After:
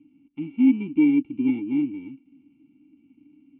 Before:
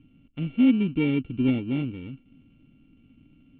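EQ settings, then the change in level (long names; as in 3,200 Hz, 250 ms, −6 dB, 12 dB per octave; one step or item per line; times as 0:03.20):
formant filter u
+8.5 dB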